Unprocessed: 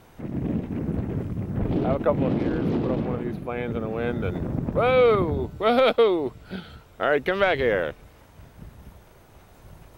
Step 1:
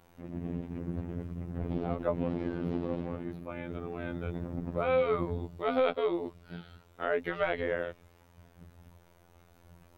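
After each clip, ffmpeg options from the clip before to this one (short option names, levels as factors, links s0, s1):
-filter_complex "[0:a]afftfilt=real='hypot(re,im)*cos(PI*b)':imag='0':win_size=2048:overlap=0.75,acrossover=split=3200[s0][s1];[s1]acompressor=threshold=0.00316:ratio=4:attack=1:release=60[s2];[s0][s2]amix=inputs=2:normalize=0,volume=0.501"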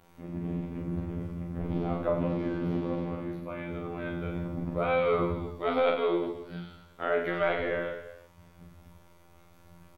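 -af "aecho=1:1:40|92|159.6|247.5|361.7:0.631|0.398|0.251|0.158|0.1,volume=1.12"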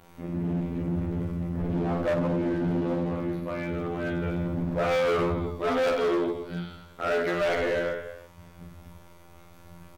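-af "asoftclip=type=hard:threshold=0.0398,volume=2"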